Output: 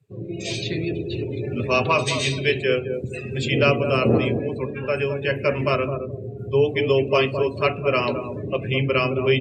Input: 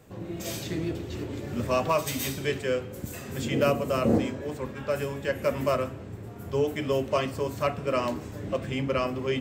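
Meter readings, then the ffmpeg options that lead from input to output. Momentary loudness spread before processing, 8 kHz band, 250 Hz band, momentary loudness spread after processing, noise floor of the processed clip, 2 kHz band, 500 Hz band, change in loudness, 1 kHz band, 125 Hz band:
10 LU, +1.5 dB, +4.0 dB, 10 LU, -34 dBFS, +10.5 dB, +6.5 dB, +6.5 dB, +4.5 dB, +8.0 dB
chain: -filter_complex "[0:a]acrossover=split=7900[a][b];[b]acompressor=threshold=-58dB:ratio=4:attack=1:release=60[c];[a][c]amix=inputs=2:normalize=0,equalizer=f=125:t=o:w=0.33:g=12,equalizer=f=400:t=o:w=0.33:g=8,equalizer=f=2.5k:t=o:w=0.33:g=7,equalizer=f=4k:t=o:w=0.33:g=6,equalizer=f=10k:t=o:w=0.33:g=7,crystalizer=i=8:c=0,highpass=74,aemphasis=mode=reproduction:type=75fm,asplit=2[d][e];[e]adelay=214,lowpass=f=830:p=1,volume=-5.5dB,asplit=2[f][g];[g]adelay=214,lowpass=f=830:p=1,volume=0.33,asplit=2[h][i];[i]adelay=214,lowpass=f=830:p=1,volume=0.33,asplit=2[j][k];[k]adelay=214,lowpass=f=830:p=1,volume=0.33[l];[d][f][h][j][l]amix=inputs=5:normalize=0,afftdn=nr=29:nf=-33"

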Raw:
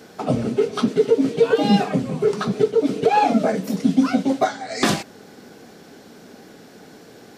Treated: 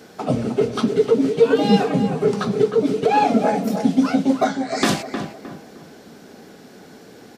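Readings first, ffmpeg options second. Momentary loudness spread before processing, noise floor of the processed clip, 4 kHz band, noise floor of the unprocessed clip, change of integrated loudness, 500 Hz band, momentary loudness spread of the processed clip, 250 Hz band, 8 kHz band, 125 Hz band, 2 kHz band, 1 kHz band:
6 LU, -45 dBFS, 0.0 dB, -46 dBFS, +1.0 dB, +1.0 dB, 8 LU, +1.0 dB, 0.0 dB, +1.0 dB, +0.5 dB, +0.5 dB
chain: -filter_complex "[0:a]asplit=2[a][b];[b]adelay=309,lowpass=f=1.6k:p=1,volume=-7dB,asplit=2[c][d];[d]adelay=309,lowpass=f=1.6k:p=1,volume=0.39,asplit=2[e][f];[f]adelay=309,lowpass=f=1.6k:p=1,volume=0.39,asplit=2[g][h];[h]adelay=309,lowpass=f=1.6k:p=1,volume=0.39,asplit=2[i][j];[j]adelay=309,lowpass=f=1.6k:p=1,volume=0.39[k];[a][c][e][g][i][k]amix=inputs=6:normalize=0"

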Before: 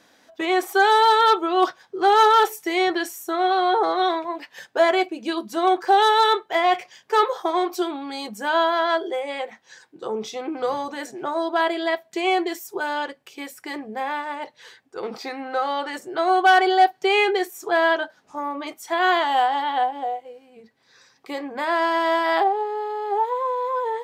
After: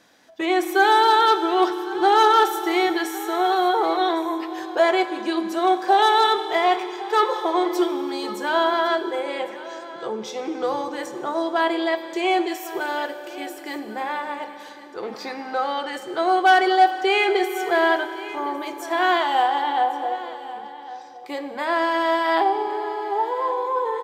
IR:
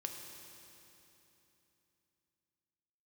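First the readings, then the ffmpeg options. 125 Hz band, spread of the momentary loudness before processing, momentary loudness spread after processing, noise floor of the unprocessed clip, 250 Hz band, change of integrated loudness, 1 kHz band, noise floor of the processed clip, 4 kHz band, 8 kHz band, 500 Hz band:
n/a, 16 LU, 16 LU, -59 dBFS, +2.5 dB, 0.0 dB, 0.0 dB, -39 dBFS, 0.0 dB, 0.0 dB, 0.0 dB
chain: -filter_complex "[0:a]aecho=1:1:1107:0.141,asplit=2[a][b];[1:a]atrim=start_sample=2205[c];[b][c]afir=irnorm=-1:irlink=0,volume=3dB[d];[a][d]amix=inputs=2:normalize=0,volume=-6.5dB"

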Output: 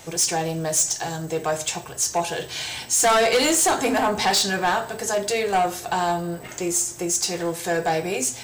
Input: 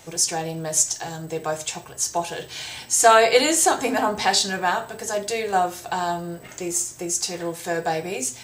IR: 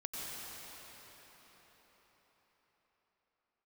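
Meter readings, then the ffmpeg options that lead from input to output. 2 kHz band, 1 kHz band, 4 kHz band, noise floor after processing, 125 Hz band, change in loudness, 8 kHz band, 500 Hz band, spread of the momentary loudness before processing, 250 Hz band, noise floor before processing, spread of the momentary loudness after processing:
-0.5 dB, -0.5 dB, +0.5 dB, -38 dBFS, +3.0 dB, 0.0 dB, +0.5 dB, -0.5 dB, 14 LU, +2.0 dB, -43 dBFS, 10 LU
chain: -filter_complex "[0:a]asoftclip=type=tanh:threshold=-18.5dB,asplit=2[a][b];[1:a]atrim=start_sample=2205,asetrate=66150,aresample=44100[c];[b][c]afir=irnorm=-1:irlink=0,volume=-21.5dB[d];[a][d]amix=inputs=2:normalize=0,volume=3.5dB"

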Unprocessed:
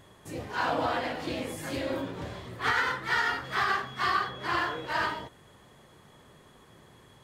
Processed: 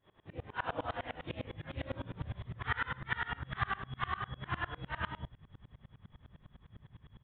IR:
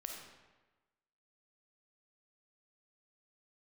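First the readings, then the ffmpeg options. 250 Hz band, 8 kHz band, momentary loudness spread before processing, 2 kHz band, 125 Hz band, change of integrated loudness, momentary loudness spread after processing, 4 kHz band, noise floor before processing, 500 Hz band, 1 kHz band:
-10.0 dB, under -30 dB, 12 LU, -9.5 dB, +0.5 dB, -9.5 dB, 21 LU, -11.5 dB, -57 dBFS, -11.0 dB, -10.5 dB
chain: -af "asubboost=boost=11:cutoff=120,aresample=8000,aresample=44100,aeval=exprs='val(0)*pow(10,-27*if(lt(mod(-9.9*n/s,1),2*abs(-9.9)/1000),1-mod(-9.9*n/s,1)/(2*abs(-9.9)/1000),(mod(-9.9*n/s,1)-2*abs(-9.9)/1000)/(1-2*abs(-9.9)/1000))/20)':c=same,volume=-1.5dB"

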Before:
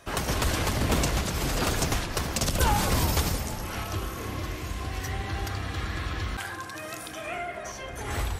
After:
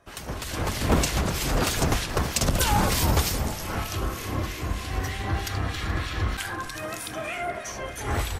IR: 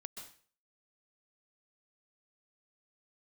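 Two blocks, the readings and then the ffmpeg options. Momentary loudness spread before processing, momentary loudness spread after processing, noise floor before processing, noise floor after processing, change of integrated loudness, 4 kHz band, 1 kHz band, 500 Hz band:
11 LU, 10 LU, -39 dBFS, -37 dBFS, +2.0 dB, +2.0 dB, +2.0 dB, +2.0 dB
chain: -filter_complex "[0:a]acrossover=split=1800[a][b];[a]aeval=exprs='val(0)*(1-0.7/2+0.7/2*cos(2*PI*3.2*n/s))':c=same[c];[b]aeval=exprs='val(0)*(1-0.7/2-0.7/2*cos(2*PI*3.2*n/s))':c=same[d];[c][d]amix=inputs=2:normalize=0,asplit=7[e][f][g][h][i][j][k];[f]adelay=427,afreqshift=-92,volume=-19dB[l];[g]adelay=854,afreqshift=-184,volume=-23.2dB[m];[h]adelay=1281,afreqshift=-276,volume=-27.3dB[n];[i]adelay=1708,afreqshift=-368,volume=-31.5dB[o];[j]adelay=2135,afreqshift=-460,volume=-35.6dB[p];[k]adelay=2562,afreqshift=-552,volume=-39.8dB[q];[e][l][m][n][o][p][q]amix=inputs=7:normalize=0,dynaudnorm=f=430:g=3:m=12dB,volume=-5.5dB"

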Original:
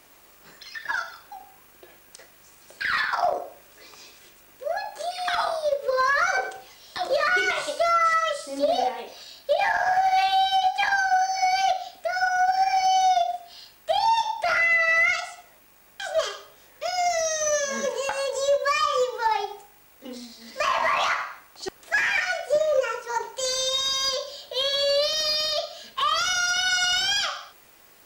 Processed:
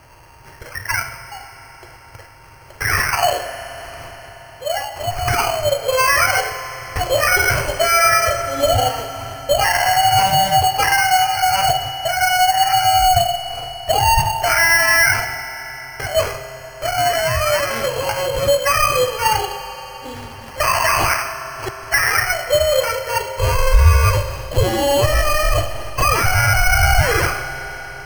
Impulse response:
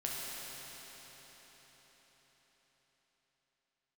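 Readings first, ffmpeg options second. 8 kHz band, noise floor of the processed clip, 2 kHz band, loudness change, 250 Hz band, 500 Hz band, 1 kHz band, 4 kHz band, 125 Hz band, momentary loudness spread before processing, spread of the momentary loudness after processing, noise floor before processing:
+9.0 dB, -41 dBFS, +7.0 dB, +7.0 dB, +11.5 dB, +6.5 dB, +6.5 dB, +5.0 dB, n/a, 16 LU, 15 LU, -54 dBFS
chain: -filter_complex "[0:a]acrusher=samples=12:mix=1:aa=0.000001,lowshelf=f=150:t=q:w=3:g=9,asplit=2[a][b];[1:a]atrim=start_sample=2205[c];[b][c]afir=irnorm=-1:irlink=0,volume=-11dB[d];[a][d]amix=inputs=2:normalize=0,volume=5dB"

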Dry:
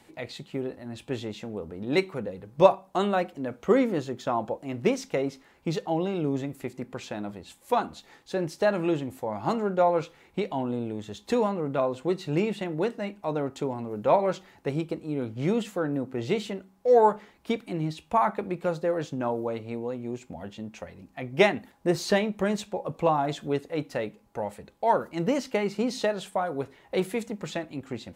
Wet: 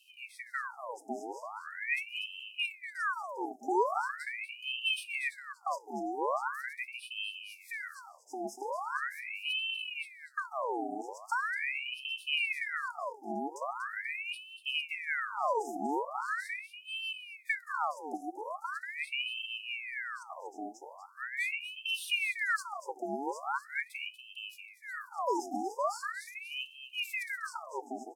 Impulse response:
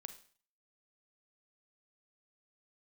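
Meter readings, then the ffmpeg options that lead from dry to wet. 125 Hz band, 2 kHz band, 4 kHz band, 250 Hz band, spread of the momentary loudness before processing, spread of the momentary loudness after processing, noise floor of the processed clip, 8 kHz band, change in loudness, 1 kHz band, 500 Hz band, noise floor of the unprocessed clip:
under -30 dB, +3.0 dB, +3.0 dB, -15.5 dB, 13 LU, 10 LU, -57 dBFS, -4.5 dB, -7.5 dB, -6.0 dB, -15.0 dB, -59 dBFS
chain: -af "aecho=1:1:240:0.316,afftfilt=real='re*(1-between(b*sr/4096,320,5500))':imag='im*(1-between(b*sr/4096,320,5500))':win_size=4096:overlap=0.75,aeval=exprs='val(0)*sin(2*PI*1700*n/s+1700*0.7/0.41*sin(2*PI*0.41*n/s))':c=same"

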